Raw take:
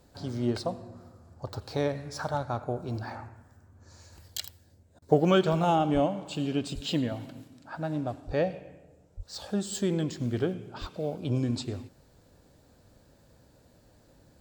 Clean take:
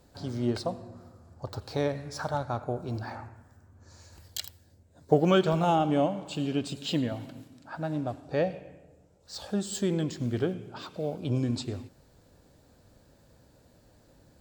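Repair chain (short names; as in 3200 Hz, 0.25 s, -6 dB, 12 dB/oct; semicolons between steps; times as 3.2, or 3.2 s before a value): de-plosive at 5.93/6.74/8.26/9.16/10.8; interpolate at 4.99, 29 ms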